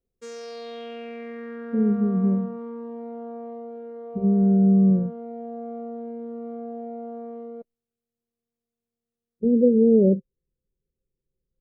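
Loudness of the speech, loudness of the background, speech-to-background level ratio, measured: -20.5 LUFS, -36.5 LUFS, 16.0 dB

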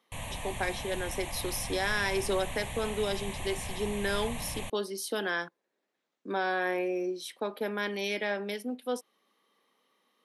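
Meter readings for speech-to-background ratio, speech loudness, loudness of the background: 6.0 dB, -33.0 LUFS, -39.0 LUFS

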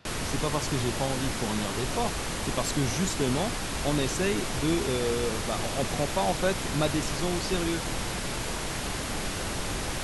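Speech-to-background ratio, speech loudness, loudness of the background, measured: 0.5 dB, -31.0 LUFS, -31.5 LUFS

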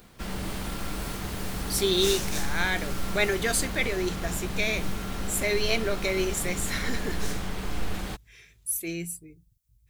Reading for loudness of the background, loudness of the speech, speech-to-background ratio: -34.0 LUFS, -28.5 LUFS, 5.5 dB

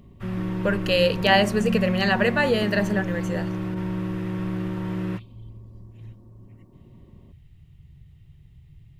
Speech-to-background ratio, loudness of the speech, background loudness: 5.0 dB, -24.5 LUFS, -29.5 LUFS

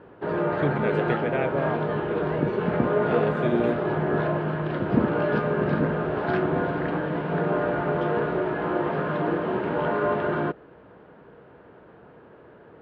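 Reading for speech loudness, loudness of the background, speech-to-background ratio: -30.0 LUFS, -25.5 LUFS, -4.5 dB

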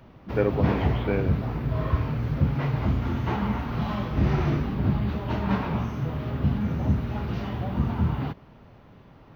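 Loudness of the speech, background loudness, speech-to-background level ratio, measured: -29.5 LUFS, -27.0 LUFS, -2.5 dB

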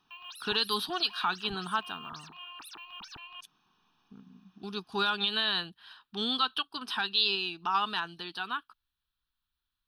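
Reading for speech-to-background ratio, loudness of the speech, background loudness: 14.5 dB, -30.5 LUFS, -45.0 LUFS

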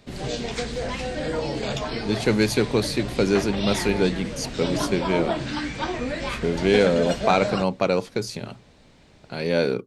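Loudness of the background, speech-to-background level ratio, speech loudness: -29.0 LUFS, 5.5 dB, -23.5 LUFS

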